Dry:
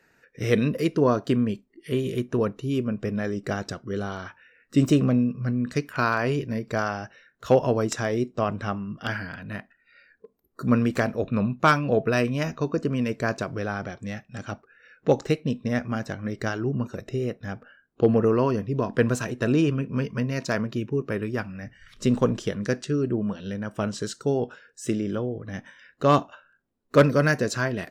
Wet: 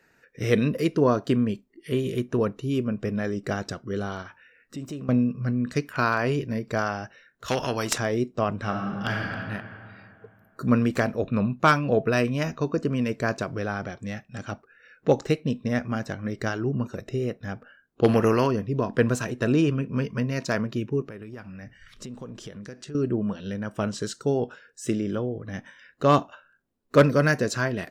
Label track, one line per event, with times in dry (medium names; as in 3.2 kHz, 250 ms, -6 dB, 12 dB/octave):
4.220000	5.090000	compression 2.5:1, threshold -40 dBFS
7.480000	7.980000	spectrum-flattening compressor 2:1
8.580000	9.330000	reverb throw, RT60 2.6 s, DRR 1 dB
18.030000	18.460000	spectral contrast reduction exponent 0.7
21.040000	22.950000	compression 5:1, threshold -37 dBFS